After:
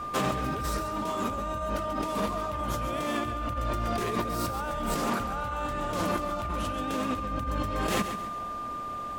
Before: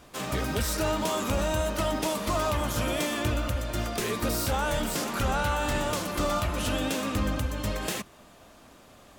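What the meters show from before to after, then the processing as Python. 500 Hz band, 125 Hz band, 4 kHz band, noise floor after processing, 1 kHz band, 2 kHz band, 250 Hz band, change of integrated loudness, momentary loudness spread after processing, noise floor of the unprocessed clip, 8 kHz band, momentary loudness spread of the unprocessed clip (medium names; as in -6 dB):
-2.5 dB, -4.0 dB, -6.0 dB, -36 dBFS, +2.0 dB, -4.0 dB, -1.5 dB, -2.0 dB, 3 LU, -53 dBFS, -7.5 dB, 4 LU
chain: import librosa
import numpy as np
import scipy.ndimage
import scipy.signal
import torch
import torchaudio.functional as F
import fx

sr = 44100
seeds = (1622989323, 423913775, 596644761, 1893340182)

p1 = fx.high_shelf(x, sr, hz=2700.0, db=-9.0)
p2 = fx.over_compress(p1, sr, threshold_db=-36.0, ratio=-1.0)
p3 = p2 + 10.0 ** (-37.0 / 20.0) * np.sin(2.0 * np.pi * 1200.0 * np.arange(len(p2)) / sr)
p4 = p3 + fx.echo_feedback(p3, sr, ms=136, feedback_pct=39, wet_db=-10.0, dry=0)
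y = p4 * librosa.db_to_amplitude(3.5)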